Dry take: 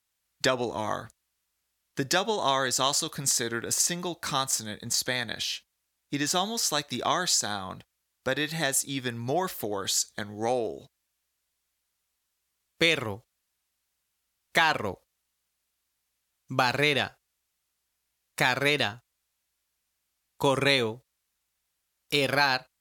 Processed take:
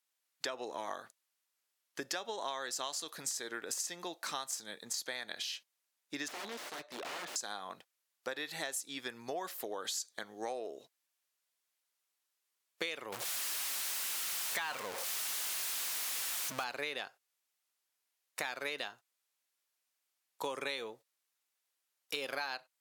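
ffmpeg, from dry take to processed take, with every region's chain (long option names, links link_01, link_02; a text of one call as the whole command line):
ffmpeg -i in.wav -filter_complex "[0:a]asettb=1/sr,asplit=3[link_01][link_02][link_03];[link_01]atrim=end=6.284[link_04];[link_02]atrim=start=6.28:end=7.36,asetpts=PTS-STARTPTS,afade=type=in:duration=0.004:curve=qsin,afade=type=out:start_time=1.076:duration=0.004:curve=qsin,aeval=exprs='(mod(22.4*val(0)+1,2)-1)/22.4':channel_layout=same,aemphasis=mode=reproduction:type=75kf,aeval=exprs='val(0)+0.002*sin(2*PI*600*n/s)':channel_layout=same[link_05];[link_03]atrim=start=7.356[link_06];[link_04][link_05]acrossfade=duration=0.004:curve1=hsin:curve2=qsin[link_07];[link_07][link_06]acrossfade=duration=0.004:curve1=qsin:curve2=hsin,asettb=1/sr,asplit=3[link_08][link_09][link_10];[link_08]atrim=end=13.124[link_11];[link_09]atrim=start=13.12:end=16.64,asetpts=PTS-STARTPTS,afade=type=in:duration=0.004:curve=qsin,afade=type=out:start_time=3.516:duration=0.004:curve=qsin,aeval=exprs='val(0)+0.5*0.0708*sgn(val(0))':channel_layout=same,equalizer=frequency=410:width_type=o:width=1.9:gain=-6[link_12];[link_10]atrim=start=16.636[link_13];[link_11][link_12]acrossfade=duration=0.004:curve1=hsin:curve2=qsin[link_14];[link_14][link_13]acrossfade=duration=0.004:curve1=qsin:curve2=hsin,highpass=380,acompressor=threshold=-31dB:ratio=4,volume=-5dB" out.wav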